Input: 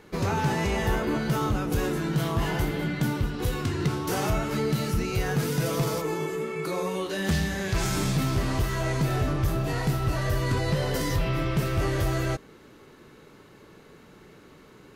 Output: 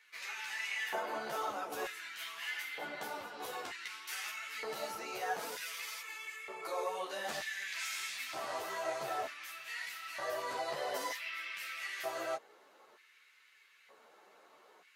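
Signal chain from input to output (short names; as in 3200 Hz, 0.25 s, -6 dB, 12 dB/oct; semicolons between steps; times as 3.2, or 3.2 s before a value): LFO high-pass square 0.54 Hz 670–2100 Hz; ensemble effect; gain -6 dB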